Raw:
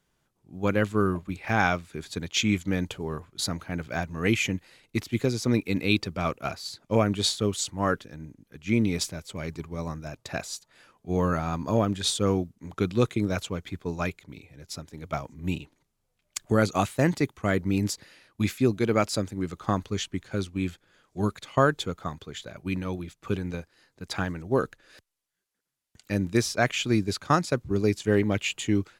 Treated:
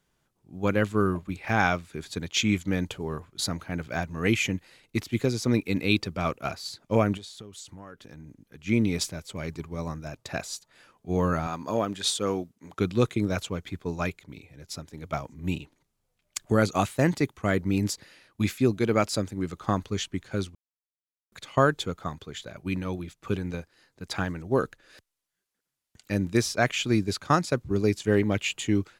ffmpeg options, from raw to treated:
ffmpeg -i in.wav -filter_complex "[0:a]asettb=1/sr,asplit=3[link_01][link_02][link_03];[link_01]atrim=end=7.174[link_04];[link_02]atrim=start=7.17:end=8.62,asetpts=PTS-STARTPTS,afade=type=in:duration=0.004:curve=qsin,afade=type=out:start_time=1.446:duration=0.004:curve=qsin,acompressor=threshold=-40dB:ratio=8:attack=3.2:release=140:knee=1:detection=peak[link_05];[link_03]atrim=start=8.616[link_06];[link_04][link_05]acrossfade=duration=0.004:curve1=hsin:curve2=qsin[link_07];[link_07][link_06]acrossfade=duration=0.004:curve1=qsin:curve2=hsin,asettb=1/sr,asplit=3[link_08][link_09][link_10];[link_08]atrim=end=11.474[link_11];[link_09]atrim=start=11.47:end=12.79,asetpts=PTS-STARTPTS,afade=type=in:duration=0.004:curve=qsin,afade=type=out:start_time=1.316:duration=0.004:curve=qsin,highpass=frequency=350:poles=1[link_12];[link_10]atrim=start=12.786[link_13];[link_11][link_12]acrossfade=duration=0.004:curve1=hsin:curve2=qsin[link_14];[link_14][link_13]acrossfade=duration=0.004:curve1=qsin:curve2=hsin,asplit=3[link_15][link_16][link_17];[link_15]atrim=end=20.55,asetpts=PTS-STARTPTS,afade=type=out:start_time=20.546:duration=0.004:curve=hsin[link_18];[link_16]atrim=start=20.55:end=21.32,asetpts=PTS-STARTPTS,volume=0[link_19];[link_17]atrim=start=21.32,asetpts=PTS-STARTPTS,afade=type=in:duration=0.004:curve=hsin[link_20];[link_18][link_19][link_20]concat=n=3:v=0:a=1" out.wav

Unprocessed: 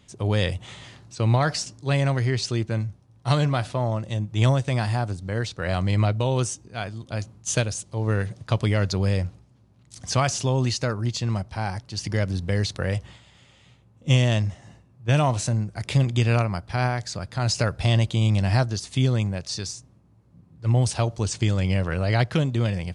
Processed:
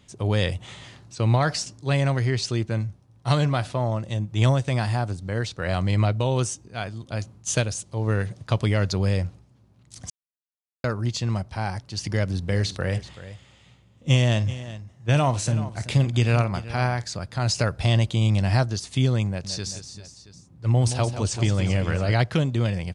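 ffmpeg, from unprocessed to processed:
ffmpeg -i in.wav -filter_complex "[0:a]asplit=3[link_01][link_02][link_03];[link_01]afade=type=out:start_time=12.49:duration=0.02[link_04];[link_02]aecho=1:1:50|381:0.141|0.178,afade=type=in:start_time=12.49:duration=0.02,afade=type=out:start_time=17.05:duration=0.02[link_05];[link_03]afade=type=in:start_time=17.05:duration=0.02[link_06];[link_04][link_05][link_06]amix=inputs=3:normalize=0,asettb=1/sr,asplit=3[link_07][link_08][link_09];[link_07]atrim=end=19.274[link_10];[link_08]atrim=start=19.27:end=22.13,asetpts=PTS-STARTPTS,afade=type=in:duration=0.004:curve=qsin,afade=type=out:start_time=2.856:duration=0.004:curve=qsin,aecho=1:1:172|391|675:0.316|0.224|0.119,atrim=end_sample=126126[link_11];[link_09]atrim=start=22.126[link_12];[link_10][link_11]acrossfade=duration=0.004:curve1=hsin:curve2=qsin[link_13];[link_13][link_12]acrossfade=duration=0.004:curve1=qsin:curve2=hsin,asplit=3[link_14][link_15][link_16];[link_14]atrim=end=10.1,asetpts=PTS-STARTPTS,afade=type=out:start_time=10.096:duration=0.004:curve=hsin[link_17];[link_15]atrim=start=10.1:end=10.84,asetpts=PTS-STARTPTS,volume=0[link_18];[link_16]atrim=start=10.84,asetpts=PTS-STARTPTS,afade=type=in:duration=0.004:curve=hsin[link_19];[link_17][link_18][link_19]concat=n=3:v=0:a=1" out.wav

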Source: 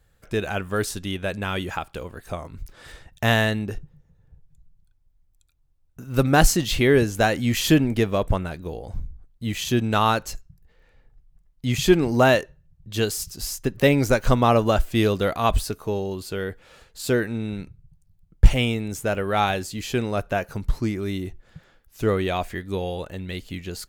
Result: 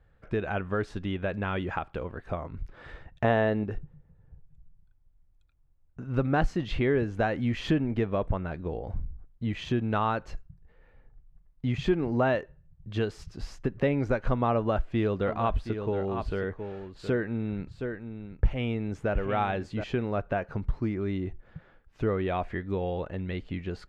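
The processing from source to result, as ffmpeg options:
ffmpeg -i in.wav -filter_complex "[0:a]asettb=1/sr,asplit=3[link_01][link_02][link_03];[link_01]atrim=end=3.244[link_04];[link_02]atrim=start=3.24:end=3.64,asetpts=PTS-STARTPTS,afade=type=in:duration=0.004:curve=qsin,afade=type=out:start_time=0.396:duration=0.004:curve=qsin,equalizer=frequency=490:width=0.65:gain=10.5[link_05];[link_03]atrim=start=3.636[link_06];[link_04][link_05]acrossfade=duration=0.004:curve1=hsin:curve2=qsin[link_07];[link_07][link_06]acrossfade=duration=0.004:curve1=qsin:curve2=hsin,asettb=1/sr,asplit=3[link_08][link_09][link_10];[link_08]atrim=end=14.554[link_11];[link_09]atrim=start=14.55:end=19.84,asetpts=PTS-STARTPTS,afade=type=in:duration=0.004:curve=qsin,afade=type=out:start_time=5.286:duration=0.004:curve=qsin,aecho=1:1:719:0.266,atrim=end_sample=233289[link_12];[link_10]atrim=start=19.836[link_13];[link_11][link_12]acrossfade=duration=0.004:curve1=hsin:curve2=qsin[link_14];[link_14][link_13]acrossfade=duration=0.004:curve1=qsin:curve2=hsin,lowpass=2000,acompressor=threshold=-28dB:ratio=2" out.wav

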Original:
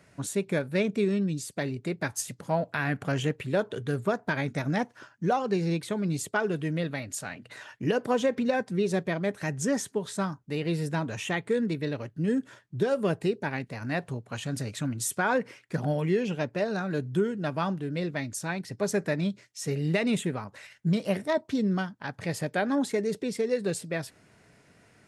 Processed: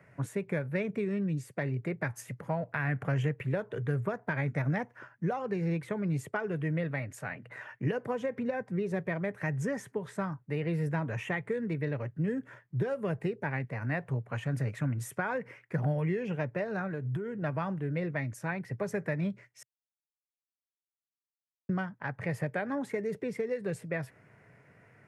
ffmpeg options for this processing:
ffmpeg -i in.wav -filter_complex "[0:a]asettb=1/sr,asplit=3[link_01][link_02][link_03];[link_01]atrim=end=7.494[link_04];[link_02]atrim=start=7.49:end=8.96,asetpts=PTS-STARTPTS,afade=type=in:duration=0.004:curve=qsin,afade=type=out:start_time=1.466:duration=0.004:curve=qsin,adynamicequalizer=threshold=0.01:dfrequency=1600:dqfactor=0.7:tfrequency=1600:tqfactor=0.7:attack=5:release=100:ratio=0.375:range=2:mode=cutabove:tftype=highshelf[link_05];[link_03]atrim=start=8.956[link_06];[link_04][link_05]acrossfade=duration=0.004:curve1=hsin:curve2=qsin[link_07];[link_07][link_06]acrossfade=duration=0.004:curve1=qsin:curve2=hsin,asettb=1/sr,asplit=3[link_08][link_09][link_10];[link_08]atrim=end=16.874[link_11];[link_09]atrim=start=16.87:end=17.42,asetpts=PTS-STARTPTS,afade=type=in:duration=0.004:curve=qsin,afade=type=out:start_time=0.546:duration=0.004:curve=qsin,acompressor=threshold=-31dB:ratio=6:attack=3.2:release=140:knee=1:detection=peak[link_12];[link_10]atrim=start=17.416[link_13];[link_11][link_12]acrossfade=duration=0.004:curve1=hsin:curve2=qsin[link_14];[link_14][link_13]acrossfade=duration=0.004:curve1=qsin:curve2=hsin,asplit=3[link_15][link_16][link_17];[link_15]atrim=end=19.63,asetpts=PTS-STARTPTS,afade=type=out:start_time=19.626:duration=0.004:curve=hsin[link_18];[link_16]atrim=start=19.63:end=21.69,asetpts=PTS-STARTPTS,volume=0[link_19];[link_17]atrim=start=21.69,asetpts=PTS-STARTPTS,afade=type=in:duration=0.004:curve=hsin[link_20];[link_18][link_19][link_20]concat=n=3:v=0:a=1,equalizer=frequency=125:width_type=o:width=1:gain=12,equalizer=frequency=500:width_type=o:width=1:gain=7,equalizer=frequency=1000:width_type=o:width=1:gain=5,equalizer=frequency=2000:width_type=o:width=1:gain=11,equalizer=frequency=4000:width_type=o:width=1:gain=-10,equalizer=frequency=8000:width_type=o:width=1:gain=-6,acrossover=split=150|3000[link_21][link_22][link_23];[link_22]acompressor=threshold=-22dB:ratio=6[link_24];[link_21][link_24][link_23]amix=inputs=3:normalize=0,volume=-8dB" out.wav

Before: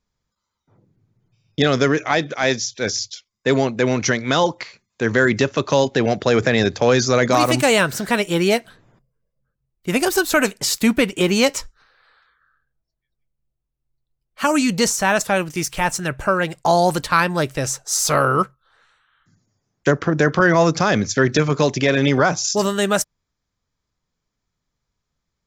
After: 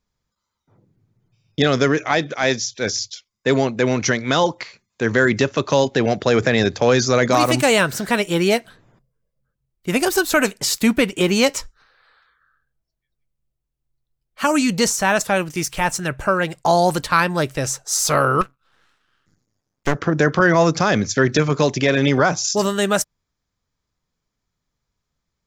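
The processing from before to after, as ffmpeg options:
ffmpeg -i in.wav -filter_complex "[0:a]asettb=1/sr,asplit=3[link_01][link_02][link_03];[link_01]atrim=end=18.414[link_04];[link_02]atrim=start=18.41:end=19.95,asetpts=PTS-STARTPTS,afade=type=in:duration=0.004:curve=qsin,afade=type=out:start_time=1.536:duration=0.004:curve=qsin,aeval=exprs='max(val(0),0)':channel_layout=same[link_05];[link_03]atrim=start=19.946[link_06];[link_04][link_05]acrossfade=duration=0.004:curve1=hsin:curve2=qsin[link_07];[link_07][link_06]acrossfade=duration=0.004:curve1=qsin:curve2=hsin" out.wav

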